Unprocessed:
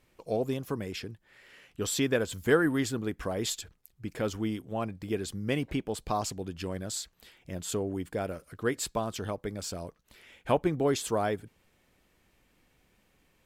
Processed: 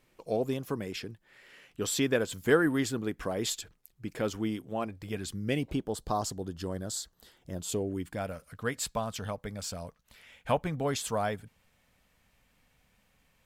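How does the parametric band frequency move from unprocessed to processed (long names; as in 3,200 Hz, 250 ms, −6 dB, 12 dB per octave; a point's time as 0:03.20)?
parametric band −13.5 dB 0.49 octaves
0:04.70 72 Hz
0:05.26 530 Hz
0:05.82 2,400 Hz
0:07.55 2,400 Hz
0:08.23 350 Hz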